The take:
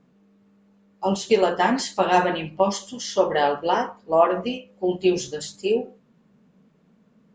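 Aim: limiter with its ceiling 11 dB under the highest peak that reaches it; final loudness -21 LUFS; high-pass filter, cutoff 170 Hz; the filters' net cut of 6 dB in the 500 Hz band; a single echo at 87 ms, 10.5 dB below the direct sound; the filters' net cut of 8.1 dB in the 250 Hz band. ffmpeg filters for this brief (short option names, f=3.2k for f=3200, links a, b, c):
-af "highpass=170,equalizer=f=250:t=o:g=-8.5,equalizer=f=500:t=o:g=-5.5,alimiter=limit=-18.5dB:level=0:latency=1,aecho=1:1:87:0.299,volume=9dB"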